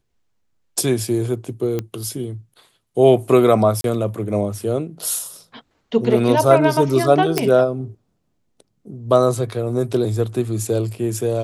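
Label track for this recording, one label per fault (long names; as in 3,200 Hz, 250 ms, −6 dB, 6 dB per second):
1.790000	1.790000	click −11 dBFS
3.810000	3.840000	drop-out 32 ms
7.380000	7.380000	click −2 dBFS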